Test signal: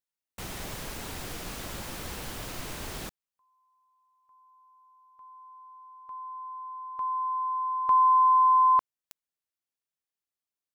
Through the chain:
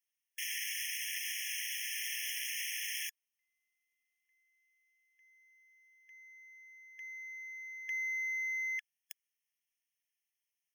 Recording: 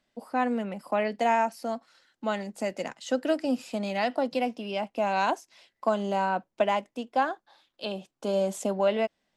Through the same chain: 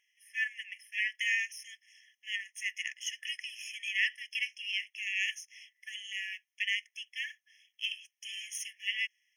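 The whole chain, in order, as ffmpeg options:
-af "aeval=exprs='if(lt(val(0),0),0.708*val(0),val(0))':c=same,afftfilt=real='re*eq(mod(floor(b*sr/1024/1700),2),1)':imag='im*eq(mod(floor(b*sr/1024/1700),2),1)':win_size=1024:overlap=0.75,volume=7.5dB"

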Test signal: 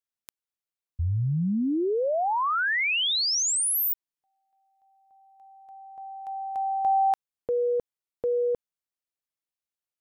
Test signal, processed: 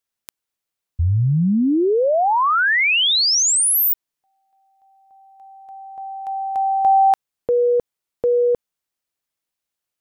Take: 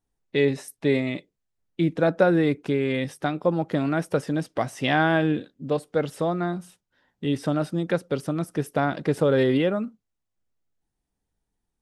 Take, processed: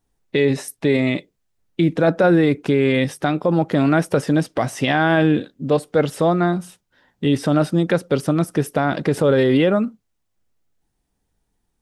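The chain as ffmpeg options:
-af "alimiter=limit=-16dB:level=0:latency=1:release=32,volume=8.5dB"

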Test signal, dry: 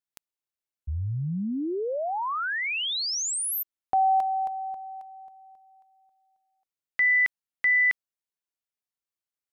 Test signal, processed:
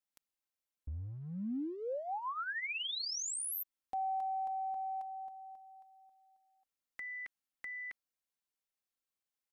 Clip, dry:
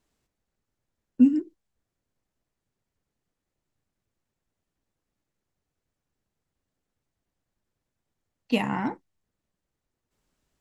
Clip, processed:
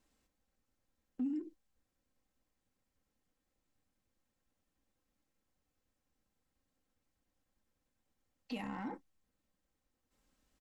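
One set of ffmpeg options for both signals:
-af "acompressor=threshold=-37dB:ratio=5:attack=0.13:release=32:knee=1:detection=rms,aecho=1:1:3.8:0.47,volume=-2dB"

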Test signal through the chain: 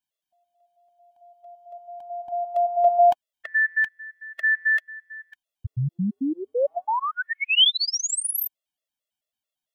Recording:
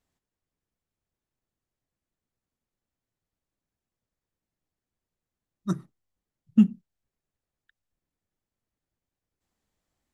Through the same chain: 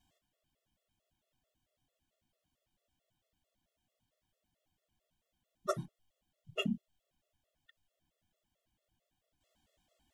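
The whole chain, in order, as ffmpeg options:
-af "equalizer=f=400:t=o:w=0.33:g=-6,equalizer=f=630:t=o:w=0.33:g=11,equalizer=f=1.25k:t=o:w=0.33:g=-3,equalizer=f=3.15k:t=o:w=0.33:g=10,afftfilt=real='re*gt(sin(2*PI*4.5*pts/sr)*(1-2*mod(floor(b*sr/1024/360),2)),0)':imag='im*gt(sin(2*PI*4.5*pts/sr)*(1-2*mod(floor(b*sr/1024/360),2)),0)':win_size=1024:overlap=0.75,volume=6.5dB"

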